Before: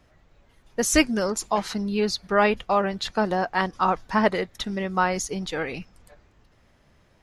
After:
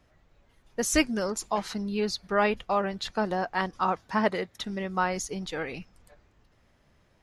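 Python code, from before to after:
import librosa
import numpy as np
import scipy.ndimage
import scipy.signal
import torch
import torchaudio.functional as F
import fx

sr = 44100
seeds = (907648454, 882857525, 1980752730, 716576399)

y = fx.highpass(x, sr, hz=71.0, slope=12, at=(3.84, 4.62))
y = F.gain(torch.from_numpy(y), -4.5).numpy()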